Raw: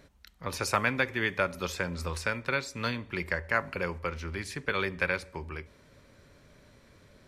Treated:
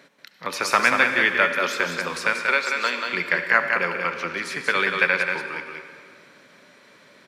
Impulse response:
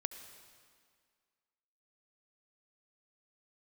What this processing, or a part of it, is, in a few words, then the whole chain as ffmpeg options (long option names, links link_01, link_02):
PA in a hall: -filter_complex "[0:a]asettb=1/sr,asplit=3[link_01][link_02][link_03];[link_01]atrim=end=2.334[link_04];[link_02]atrim=start=2.33:end=3.06,asetpts=PTS-STARTPTS,afade=type=in:duration=0.004:curve=qsin,afade=type=out:start_time=0.726:duration=0.004:curve=qsin,highpass=frequency=300:width=0.5412,highpass=frequency=300:width=1.3066[link_05];[link_03]atrim=start=3.056[link_06];[link_04][link_05]acrossfade=duration=0.004:curve1=hsin:curve2=qsin[link_07];[link_07][link_06]acrossfade=duration=0.004:curve1=qsin:curve2=hsin,highpass=frequency=170:width=0.5412,highpass=frequency=170:width=1.3066,equalizer=frequency=2100:width_type=o:width=2.8:gain=8,aecho=1:1:185:0.562[link_08];[1:a]atrim=start_sample=2205[link_09];[link_08][link_09]afir=irnorm=-1:irlink=0,volume=3.5dB"